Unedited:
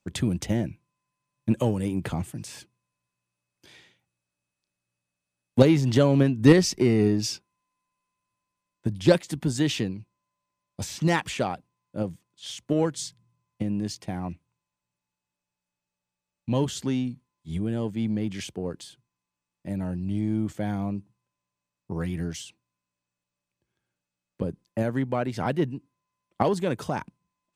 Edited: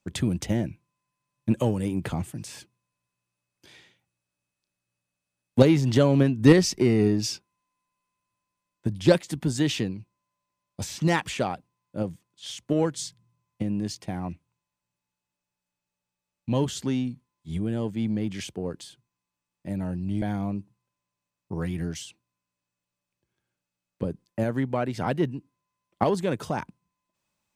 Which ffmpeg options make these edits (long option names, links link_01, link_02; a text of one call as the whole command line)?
ffmpeg -i in.wav -filter_complex "[0:a]asplit=2[link_01][link_02];[link_01]atrim=end=20.222[link_03];[link_02]atrim=start=20.608[link_04];[link_03][link_04]acrossfade=duration=0.004:curve1=hsin:curve2=hsin" out.wav